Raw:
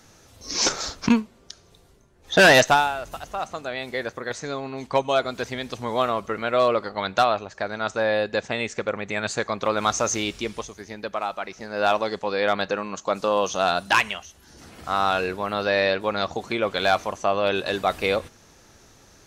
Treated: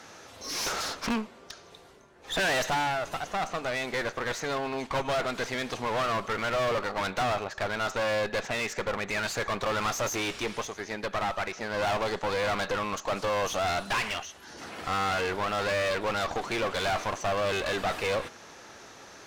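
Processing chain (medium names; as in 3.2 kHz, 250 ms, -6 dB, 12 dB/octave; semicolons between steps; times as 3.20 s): overdrive pedal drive 24 dB, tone 2.3 kHz, clips at -8.5 dBFS; one-sided clip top -28.5 dBFS, bottom -12 dBFS; trim -7.5 dB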